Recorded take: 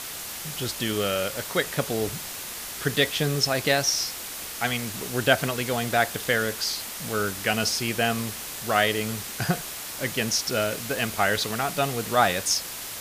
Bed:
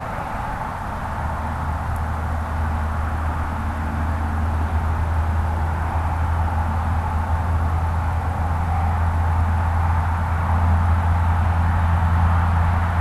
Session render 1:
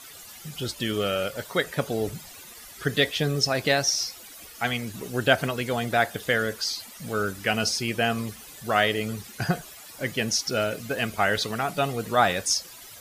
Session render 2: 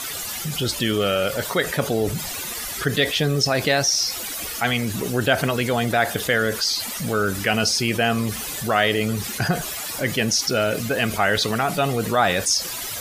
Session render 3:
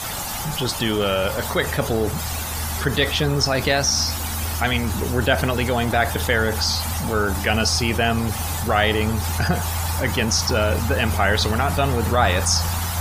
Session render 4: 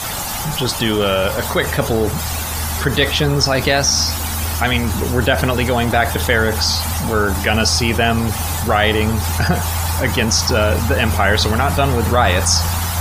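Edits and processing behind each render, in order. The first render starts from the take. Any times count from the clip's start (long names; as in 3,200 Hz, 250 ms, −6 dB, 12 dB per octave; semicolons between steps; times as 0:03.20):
broadband denoise 14 dB, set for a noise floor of −36 dBFS
envelope flattener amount 50%
mix in bed −6 dB
level +4.5 dB; brickwall limiter −2 dBFS, peak gain reduction 2.5 dB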